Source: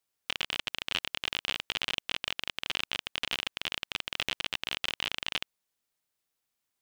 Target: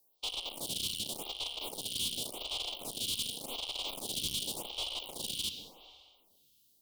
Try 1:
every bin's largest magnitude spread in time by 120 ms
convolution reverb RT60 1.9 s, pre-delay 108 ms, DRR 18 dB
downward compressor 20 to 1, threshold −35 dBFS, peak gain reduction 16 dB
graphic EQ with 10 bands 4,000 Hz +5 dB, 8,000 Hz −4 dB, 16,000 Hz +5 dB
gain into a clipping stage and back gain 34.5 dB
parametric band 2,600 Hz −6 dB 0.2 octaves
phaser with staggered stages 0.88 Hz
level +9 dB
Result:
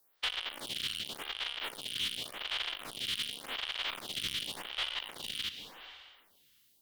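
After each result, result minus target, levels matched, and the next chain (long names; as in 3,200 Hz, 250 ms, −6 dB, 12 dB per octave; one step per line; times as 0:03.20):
2,000 Hz band +10.5 dB; downward compressor: peak gain reduction +8.5 dB
every bin's largest magnitude spread in time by 120 ms
convolution reverb RT60 1.9 s, pre-delay 108 ms, DRR 18 dB
downward compressor 20 to 1, threshold −35 dBFS, peak gain reduction 16 dB
graphic EQ with 10 bands 4,000 Hz +5 dB, 8,000 Hz −4 dB, 16,000 Hz +5 dB
gain into a clipping stage and back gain 34.5 dB
Butterworth band-reject 1,700 Hz, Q 0.63
parametric band 2,600 Hz −6 dB 0.2 octaves
phaser with staggered stages 0.88 Hz
level +9 dB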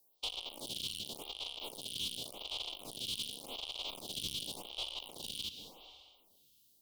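downward compressor: peak gain reduction +8.5 dB
every bin's largest magnitude spread in time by 120 ms
convolution reverb RT60 1.9 s, pre-delay 108 ms, DRR 18 dB
downward compressor 20 to 1, threshold −26 dBFS, peak gain reduction 7.5 dB
graphic EQ with 10 bands 4,000 Hz +5 dB, 8,000 Hz −4 dB, 16,000 Hz +5 dB
gain into a clipping stage and back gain 34.5 dB
Butterworth band-reject 1,700 Hz, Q 0.63
parametric band 2,600 Hz −6 dB 0.2 octaves
phaser with staggered stages 0.88 Hz
level +9 dB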